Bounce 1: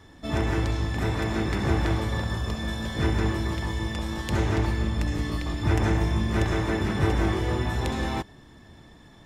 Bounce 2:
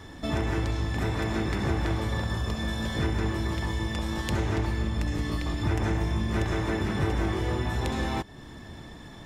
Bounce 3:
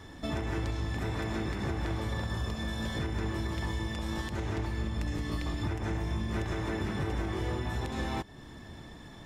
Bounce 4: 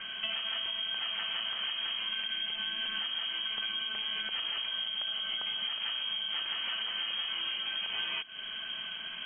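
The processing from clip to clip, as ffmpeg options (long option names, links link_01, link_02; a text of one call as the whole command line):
ffmpeg -i in.wav -af "acompressor=threshold=-38dB:ratio=2,volume=6.5dB" out.wav
ffmpeg -i in.wav -af "alimiter=limit=-20dB:level=0:latency=1:release=144,volume=-3.5dB" out.wav
ffmpeg -i in.wav -af "acompressor=threshold=-39dB:ratio=12,crystalizer=i=3.5:c=0,lowpass=frequency=2800:width_type=q:width=0.5098,lowpass=frequency=2800:width_type=q:width=0.6013,lowpass=frequency=2800:width_type=q:width=0.9,lowpass=frequency=2800:width_type=q:width=2.563,afreqshift=-3300,volume=7dB" out.wav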